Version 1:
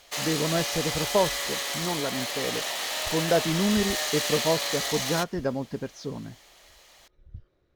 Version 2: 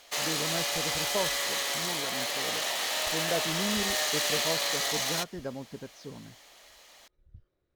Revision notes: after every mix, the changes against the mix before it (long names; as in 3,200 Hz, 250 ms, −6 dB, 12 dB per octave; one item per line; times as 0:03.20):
speech −9.0 dB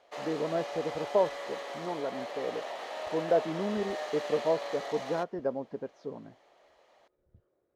speech +7.5 dB
master: add resonant band-pass 560 Hz, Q 1.1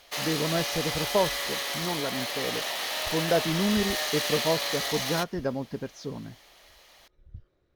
background: add parametric band 7,500 Hz −7.5 dB 0.46 octaves
master: remove resonant band-pass 560 Hz, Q 1.1